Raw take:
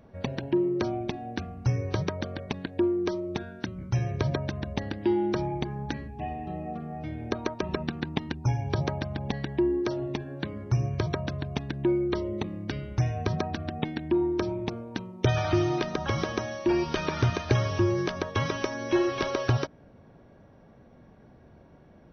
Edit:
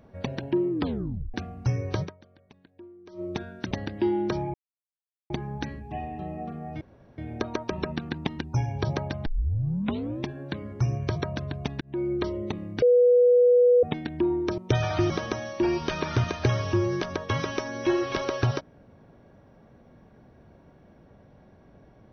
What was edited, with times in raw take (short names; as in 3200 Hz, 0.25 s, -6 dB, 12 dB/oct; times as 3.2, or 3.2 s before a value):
0.7 tape stop 0.64 s
2.04–3.21 dip -22.5 dB, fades 0.39 s exponential
3.71–4.75 cut
5.58 insert silence 0.76 s
7.09 insert room tone 0.37 s
9.17 tape start 1.00 s
11.72–12.04 fade in
12.73–13.74 bleep 490 Hz -14.5 dBFS
14.49–15.12 cut
15.64–16.16 cut